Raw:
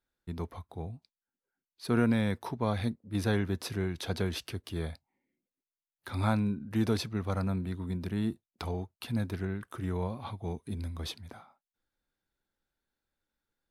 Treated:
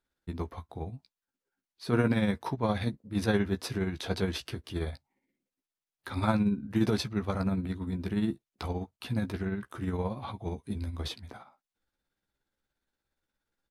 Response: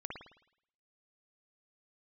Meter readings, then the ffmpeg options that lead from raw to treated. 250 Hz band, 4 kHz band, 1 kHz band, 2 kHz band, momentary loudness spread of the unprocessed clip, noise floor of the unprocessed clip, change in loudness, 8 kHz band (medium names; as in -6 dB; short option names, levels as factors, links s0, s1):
+2.0 dB, +1.5 dB, +2.0 dB, +2.0 dB, 13 LU, under -85 dBFS, +1.5 dB, 0.0 dB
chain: -filter_complex "[0:a]highshelf=f=12000:g=-9.5,tremolo=f=17:d=0.5,asplit=2[s0][s1];[s1]adelay=15,volume=0.447[s2];[s0][s2]amix=inputs=2:normalize=0,volume=1.5"